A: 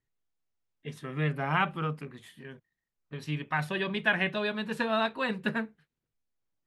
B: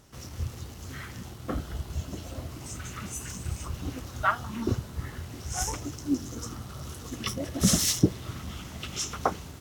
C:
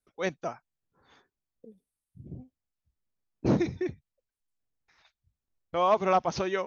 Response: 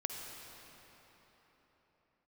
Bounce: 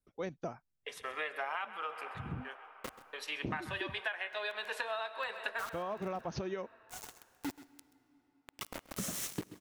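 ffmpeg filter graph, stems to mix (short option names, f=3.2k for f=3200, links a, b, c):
-filter_complex "[0:a]agate=range=-35dB:threshold=-44dB:ratio=16:detection=peak,highpass=f=540:w=0.5412,highpass=f=540:w=1.3066,volume=2.5dB,asplit=3[a][b][c];[b]volume=-12dB[d];[c]volume=-15dB[e];[1:a]highpass=f=370:p=1,equalizer=f=4.6k:t=o:w=0.87:g=-12.5,acrusher=bits=4:mix=0:aa=0.000001,adelay=1350,volume=-7.5dB,asplit=3[f][g][h];[g]volume=-18.5dB[i];[h]volume=-17dB[j];[2:a]lowshelf=f=460:g=9.5,acompressor=threshold=-24dB:ratio=6,volume=-5.5dB,asplit=2[k][l];[l]apad=whole_len=483096[m];[f][m]sidechaincompress=threshold=-47dB:ratio=8:attack=8.9:release=569[n];[3:a]atrim=start_sample=2205[o];[d][i]amix=inputs=2:normalize=0[p];[p][o]afir=irnorm=-1:irlink=0[q];[e][j]amix=inputs=2:normalize=0,aecho=0:1:131:1[r];[a][n][k][q][r]amix=inputs=5:normalize=0,acompressor=threshold=-34dB:ratio=12"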